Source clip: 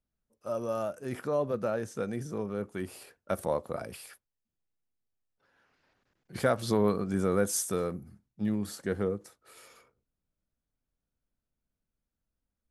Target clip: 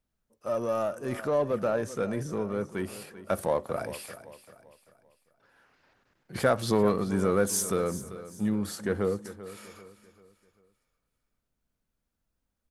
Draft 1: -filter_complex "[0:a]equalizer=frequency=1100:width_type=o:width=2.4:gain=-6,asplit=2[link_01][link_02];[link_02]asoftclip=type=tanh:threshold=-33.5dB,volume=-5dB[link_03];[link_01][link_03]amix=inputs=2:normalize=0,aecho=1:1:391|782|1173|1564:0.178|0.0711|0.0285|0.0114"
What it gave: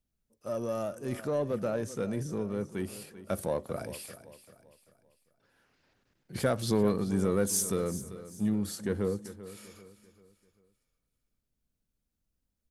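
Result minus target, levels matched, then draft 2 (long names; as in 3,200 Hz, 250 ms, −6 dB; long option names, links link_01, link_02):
1,000 Hz band −4.5 dB
-filter_complex "[0:a]equalizer=frequency=1100:width_type=o:width=2.4:gain=2.5,asplit=2[link_01][link_02];[link_02]asoftclip=type=tanh:threshold=-33.5dB,volume=-5dB[link_03];[link_01][link_03]amix=inputs=2:normalize=0,aecho=1:1:391|782|1173|1564:0.178|0.0711|0.0285|0.0114"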